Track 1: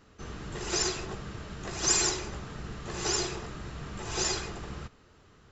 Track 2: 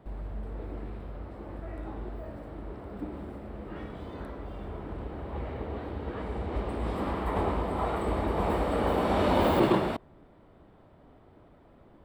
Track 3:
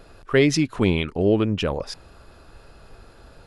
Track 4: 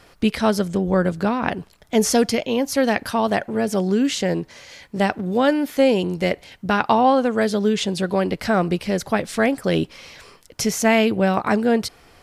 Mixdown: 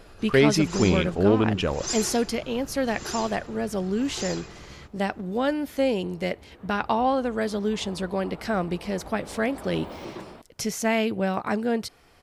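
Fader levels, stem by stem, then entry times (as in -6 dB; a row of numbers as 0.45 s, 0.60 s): -5.5 dB, -15.0 dB, -1.5 dB, -7.0 dB; 0.00 s, 0.45 s, 0.00 s, 0.00 s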